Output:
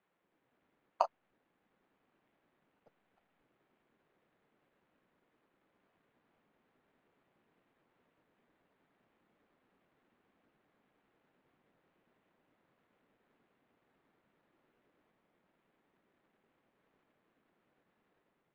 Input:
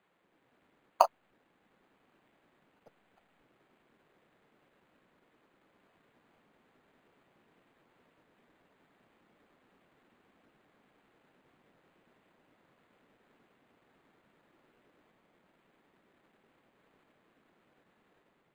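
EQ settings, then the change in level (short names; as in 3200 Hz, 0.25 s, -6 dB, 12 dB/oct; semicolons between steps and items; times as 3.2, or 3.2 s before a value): air absorption 100 m; -7.0 dB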